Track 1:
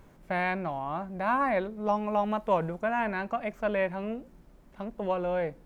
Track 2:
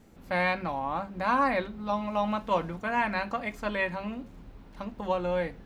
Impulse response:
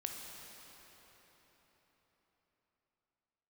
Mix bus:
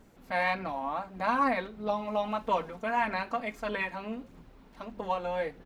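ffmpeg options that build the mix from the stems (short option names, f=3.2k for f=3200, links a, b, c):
-filter_complex "[0:a]volume=-9dB[a];[1:a]lowshelf=f=120:g=-11,bandreject=f=50:t=h:w=6,bandreject=f=100:t=h:w=6,bandreject=f=150:t=h:w=6,bandreject=f=200:t=h:w=6,adelay=1.2,volume=-2.5dB[b];[a][b]amix=inputs=2:normalize=0,aphaser=in_gain=1:out_gain=1:delay=4.6:decay=0.3:speed=1.6:type=sinusoidal"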